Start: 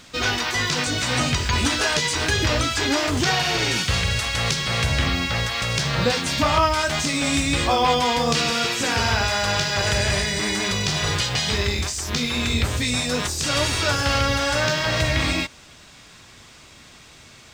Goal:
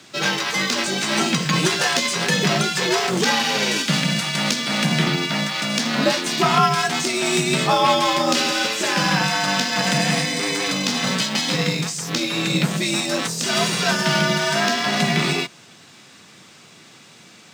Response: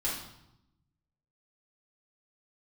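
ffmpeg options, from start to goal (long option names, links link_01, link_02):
-filter_complex "[0:a]asplit=2[link_01][link_02];[link_02]acrusher=bits=2:mix=0:aa=0.5,volume=-11dB[link_03];[link_01][link_03]amix=inputs=2:normalize=0,afreqshift=89"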